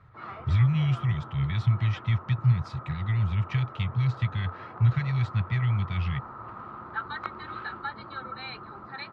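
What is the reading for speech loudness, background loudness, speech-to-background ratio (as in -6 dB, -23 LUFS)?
-27.5 LUFS, -40.5 LUFS, 13.0 dB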